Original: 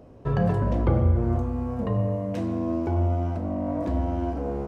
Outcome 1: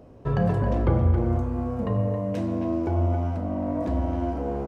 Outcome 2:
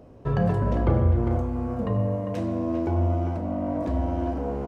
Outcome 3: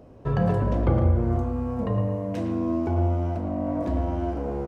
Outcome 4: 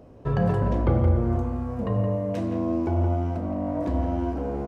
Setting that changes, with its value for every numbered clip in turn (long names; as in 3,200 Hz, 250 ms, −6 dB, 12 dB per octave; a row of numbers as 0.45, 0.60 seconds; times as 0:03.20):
far-end echo of a speakerphone, delay time: 270, 400, 110, 170 milliseconds